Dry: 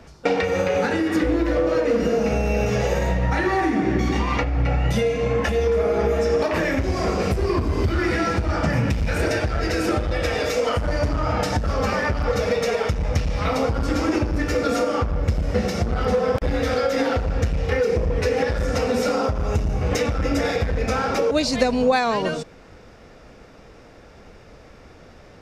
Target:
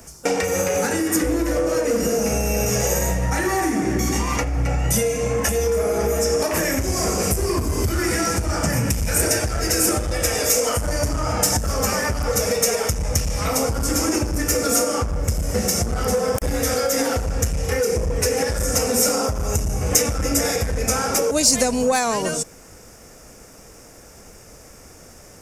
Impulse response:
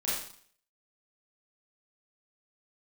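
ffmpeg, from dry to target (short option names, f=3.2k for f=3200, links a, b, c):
-af "acontrast=78,aexciter=amount=13.6:drive=4.2:freq=5.9k,volume=-7dB"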